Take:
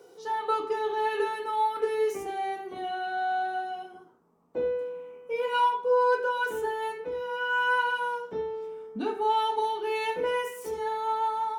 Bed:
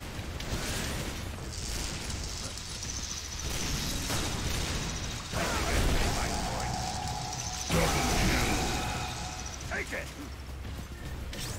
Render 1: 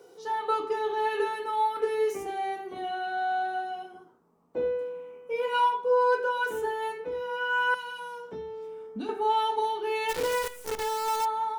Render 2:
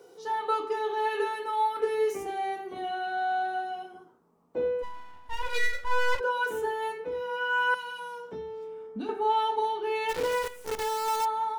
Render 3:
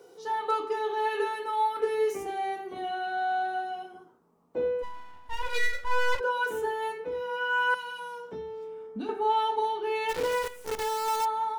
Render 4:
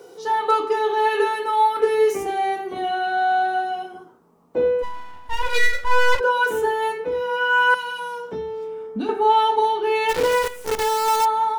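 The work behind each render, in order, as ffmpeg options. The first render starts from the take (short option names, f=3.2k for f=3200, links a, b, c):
-filter_complex "[0:a]asettb=1/sr,asplit=3[a][b][c];[a]atrim=end=7.744[d];[b]atrim=start=7.74:end=9.09,asetpts=PTS-STARTPTS,afade=t=in:d=0.004:c=qsin,afade=t=out:st=1.346:d=0.004:c=qsin,acrossover=split=250|3000[e][f][g];[f]acompressor=threshold=-37dB:ratio=6:attack=3.2:release=140:knee=2.83:detection=peak[h];[e][h][g]amix=inputs=3:normalize=0[i];[c]atrim=start=9.086[j];[d][i]acrossfade=d=0.004:c1=hsin:c2=qsin[k];[k][j]acrossfade=d=0.004:c1=qsin:c2=hsin,asplit=3[l][m][n];[l]afade=t=out:st=10.08:d=0.02[o];[m]acrusher=bits=6:dc=4:mix=0:aa=0.000001,afade=t=in:st=10.08:d=0.02,afade=t=out:st=11.24:d=0.02[p];[n]afade=t=in:st=11.24:d=0.02[q];[o][p][q]amix=inputs=3:normalize=0"
-filter_complex "[0:a]asettb=1/sr,asplit=3[a][b][c];[a]atrim=end=0.474[d];[b]atrim=start=0.47:end=1.79,asetpts=PTS-STARTPTS,afade=t=in:d=0.004:c=qsin,afade=t=out:st=1.316:d=0.004:c=qsin,highpass=f=240:p=1[e];[c]atrim=start=1.786[f];[d][e]acrossfade=d=0.004:c1=hsin:c2=qsin[g];[g][f]acrossfade=d=0.004:c1=qsin:c2=hsin,asplit=3[h][i][j];[h]afade=t=out:st=4.82:d=0.02[k];[i]aeval=exprs='abs(val(0))':c=same,afade=t=in:st=4.82:d=0.02,afade=t=out:st=6.19:d=0.02[l];[j]afade=t=in:st=6.19:d=0.02[m];[k][l][m]amix=inputs=3:normalize=0,asettb=1/sr,asplit=3[n][o][p];[n]atrim=end=8.644[q];[o]atrim=start=8.64:end=10.71,asetpts=PTS-STARTPTS,afade=t=in:d=0.004:c=qsin,afade=t=out:st=2.066:d=0.004:c=qsin,highshelf=f=5.1k:g=-6.5[r];[p]atrim=start=10.706[s];[q][r]acrossfade=d=0.004:c1=hsin:c2=qsin[t];[t][s]acrossfade=d=0.004:c1=qsin:c2=hsin"
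-af "asoftclip=type=hard:threshold=-17dB"
-af "volume=9dB"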